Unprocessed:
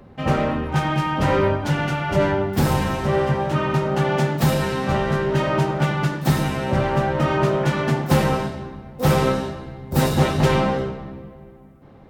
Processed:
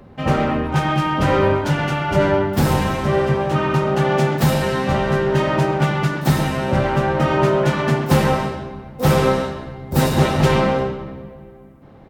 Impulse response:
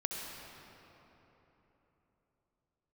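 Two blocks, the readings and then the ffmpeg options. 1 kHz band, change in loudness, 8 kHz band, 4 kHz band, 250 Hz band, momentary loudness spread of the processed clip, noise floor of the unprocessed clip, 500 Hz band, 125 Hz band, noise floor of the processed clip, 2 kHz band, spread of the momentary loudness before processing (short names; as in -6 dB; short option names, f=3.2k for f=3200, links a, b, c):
+2.5 dB, +2.5 dB, +2.0 dB, +2.5 dB, +2.5 dB, 6 LU, -45 dBFS, +3.0 dB, +2.0 dB, -43 dBFS, +2.5 dB, 6 LU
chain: -filter_complex "[0:a]asplit=2[a][b];[b]adelay=130,highpass=300,lowpass=3.4k,asoftclip=type=hard:threshold=-14dB,volume=-7dB[c];[a][c]amix=inputs=2:normalize=0,volume=2dB"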